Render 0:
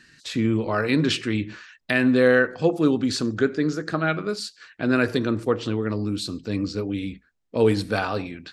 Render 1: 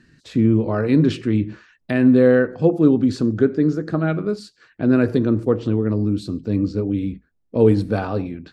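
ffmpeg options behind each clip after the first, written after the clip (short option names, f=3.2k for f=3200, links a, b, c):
-af "tiltshelf=f=880:g=8.5,volume=-1dB"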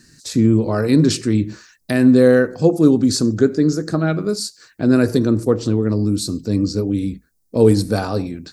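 -af "aexciter=amount=6.4:drive=6.3:freq=4.4k,volume=2dB"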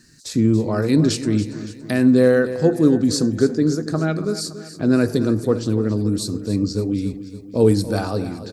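-af "aecho=1:1:283|566|849|1132|1415:0.211|0.112|0.0594|0.0315|0.0167,volume=-2.5dB"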